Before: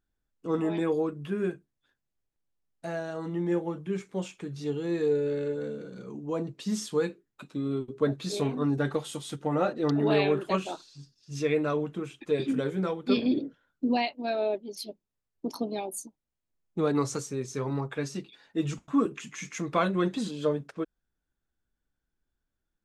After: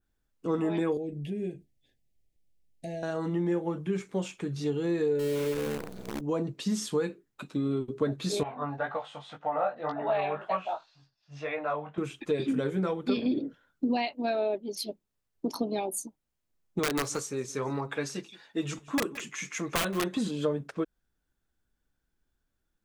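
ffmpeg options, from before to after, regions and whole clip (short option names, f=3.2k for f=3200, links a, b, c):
-filter_complex "[0:a]asettb=1/sr,asplit=3[a][b][c];[a]atrim=end=0.974[d];[b]atrim=start=0.97:end=3.03,asetpts=PTS-STARTPTS,afade=t=in:d=0.004:c=qsin,afade=t=out:st=2.056:d=0.004:c=qsin,lowshelf=f=150:g=9,acompressor=threshold=-42dB:ratio=2:attack=3.2:release=140:knee=1:detection=peak,asuperstop=centerf=1200:order=8:qfactor=1.1[e];[c]atrim=start=3.026[f];[d][e]acrossfade=d=0.004:c1=hsin:c2=qsin[g];[g][f]acrossfade=d=0.004:c1=qsin:c2=hsin,asettb=1/sr,asplit=3[h][i][j];[h]atrim=end=5.194[k];[i]atrim=start=5.19:end=6.21,asetpts=PTS-STARTPTS,afade=t=in:d=0.004:c=qsin,afade=t=out:st=1.016:d=0.004:c=qsin,equalizer=f=1.2k:t=o:w=0.9:g=-12,acrusher=bits=7:dc=4:mix=0:aa=0.000001[l];[j]atrim=start=6.206[m];[k][l]acrossfade=d=0.004:c1=hsin:c2=qsin[n];[n][m]acrossfade=d=0.004:c1=qsin:c2=hsin,asettb=1/sr,asplit=3[o][p][q];[o]atrim=end=8.434[r];[p]atrim=start=8.43:end=11.98,asetpts=PTS-STARTPTS,afade=t=in:d=0.004:c=qsin,afade=t=out:st=3.546:d=0.004:c=qsin,lowpass=2.4k,lowshelf=f=500:t=q:w=3:g=-10.5,flanger=delay=16.5:depth=4.3:speed=1.9[s];[q]atrim=start=11.976[t];[r][s]acrossfade=d=0.004:c1=hsin:c2=qsin[u];[u][t]acrossfade=d=0.004:c1=qsin:c2=hsin,asettb=1/sr,asplit=3[v][w][x];[v]atrim=end=16.794[y];[w]atrim=start=16.79:end=20.17,asetpts=PTS-STARTPTS,afade=t=in:d=0.004:c=qsin,afade=t=out:st=3.376:d=0.004:c=qsin,lowshelf=f=280:g=-10.5,aeval=exprs='(mod(10.6*val(0)+1,2)-1)/10.6':c=same,aecho=1:1:172:0.0891,atrim=end_sample=149058[z];[x]atrim=start=20.166[aa];[y][z]acrossfade=d=0.004:c1=hsin:c2=qsin[ab];[ab][aa]acrossfade=d=0.004:c1=qsin:c2=hsin,adynamicequalizer=threshold=0.002:dfrequency=4800:dqfactor=1.1:tfrequency=4800:tqfactor=1.1:attack=5:release=100:ratio=0.375:range=2:mode=cutabove:tftype=bell,acompressor=threshold=-30dB:ratio=3,volume=4dB"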